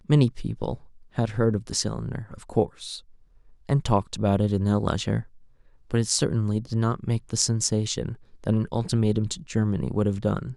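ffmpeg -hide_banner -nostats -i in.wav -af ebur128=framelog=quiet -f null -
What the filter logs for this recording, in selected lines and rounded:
Integrated loudness:
  I:         -25.7 LUFS
  Threshold: -36.3 LUFS
Loudness range:
  LRA:         2.5 LU
  Threshold: -46.3 LUFS
  LRA low:   -27.9 LUFS
  LRA high:  -25.5 LUFS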